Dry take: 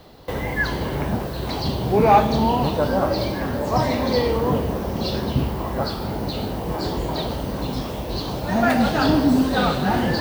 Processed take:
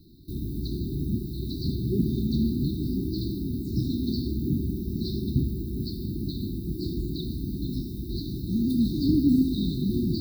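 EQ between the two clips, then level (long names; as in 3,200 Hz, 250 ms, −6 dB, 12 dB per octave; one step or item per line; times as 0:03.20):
linear-phase brick-wall band-stop 390–3,600 Hz
parametric band 6,700 Hz −13.5 dB 1 octave
−3.0 dB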